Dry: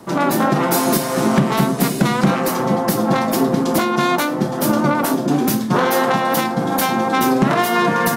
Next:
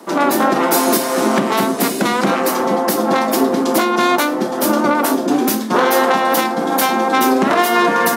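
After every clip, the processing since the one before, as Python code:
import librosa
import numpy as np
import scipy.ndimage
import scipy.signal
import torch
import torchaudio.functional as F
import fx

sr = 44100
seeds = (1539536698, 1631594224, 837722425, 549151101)

y = scipy.signal.sosfilt(scipy.signal.butter(4, 240.0, 'highpass', fs=sr, output='sos'), x)
y = y * librosa.db_to_amplitude(3.0)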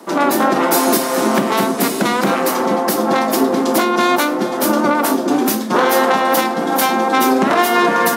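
y = x + 10.0 ** (-15.0 / 20.0) * np.pad(x, (int(417 * sr / 1000.0), 0))[:len(x)]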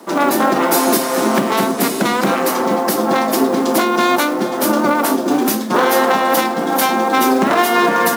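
y = fx.quant_companded(x, sr, bits=6)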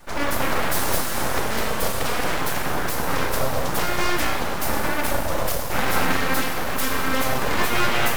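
y = fx.rev_schroeder(x, sr, rt60_s=2.3, comb_ms=30, drr_db=2.0)
y = np.abs(y)
y = y * librosa.db_to_amplitude(-7.0)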